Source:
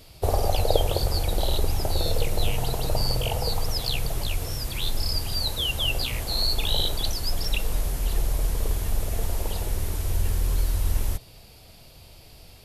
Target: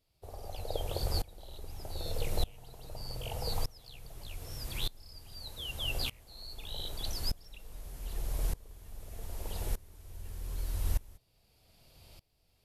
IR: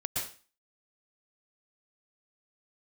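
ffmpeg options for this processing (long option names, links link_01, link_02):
-af "aeval=exprs='val(0)*pow(10,-24*if(lt(mod(-0.82*n/s,1),2*abs(-0.82)/1000),1-mod(-0.82*n/s,1)/(2*abs(-0.82)/1000),(mod(-0.82*n/s,1)-2*abs(-0.82)/1000)/(1-2*abs(-0.82)/1000))/20)':channel_layout=same,volume=-5.5dB"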